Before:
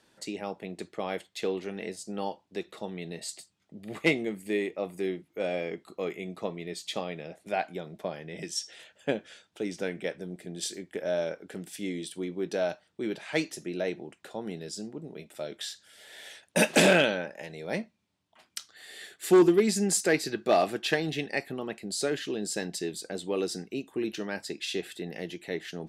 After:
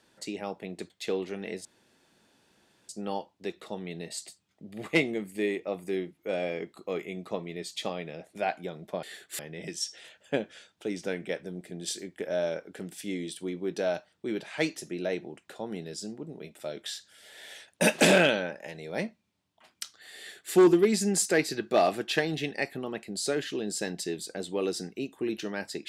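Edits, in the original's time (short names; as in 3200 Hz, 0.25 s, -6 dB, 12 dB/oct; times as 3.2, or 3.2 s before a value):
0.9–1.25 cut
2 insert room tone 1.24 s
18.93–19.29 copy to 8.14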